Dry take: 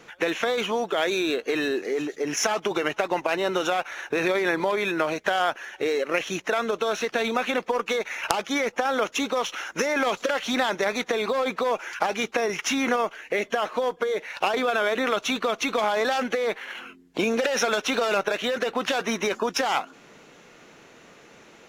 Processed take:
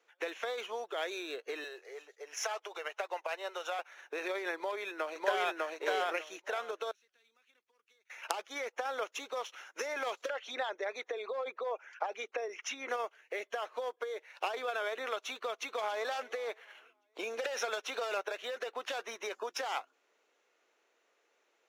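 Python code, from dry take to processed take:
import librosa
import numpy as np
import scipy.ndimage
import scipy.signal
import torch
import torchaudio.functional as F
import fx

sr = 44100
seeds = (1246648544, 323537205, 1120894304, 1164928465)

y = fx.highpass(x, sr, hz=450.0, slope=24, at=(1.64, 3.79))
y = fx.echo_throw(y, sr, start_s=4.55, length_s=1.04, ms=600, feedback_pct=25, wet_db=0.0)
y = fx.tone_stack(y, sr, knobs='6-0-2', at=(6.91, 8.1))
y = fx.envelope_sharpen(y, sr, power=1.5, at=(10.28, 12.88), fade=0.02)
y = fx.echo_throw(y, sr, start_s=15.56, length_s=0.49, ms=280, feedback_pct=60, wet_db=-17.0)
y = scipy.signal.sosfilt(scipy.signal.butter(4, 380.0, 'highpass', fs=sr, output='sos'), y)
y = fx.upward_expand(y, sr, threshold_db=-46.0, expansion=1.5)
y = F.gain(torch.from_numpy(y), -8.5).numpy()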